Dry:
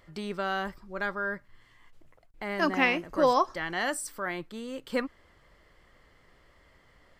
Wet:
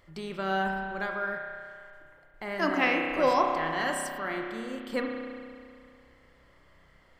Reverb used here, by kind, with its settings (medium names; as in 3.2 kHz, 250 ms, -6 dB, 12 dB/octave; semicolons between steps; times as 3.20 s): spring tank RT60 2.2 s, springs 31 ms, chirp 35 ms, DRR 1.5 dB; trim -2 dB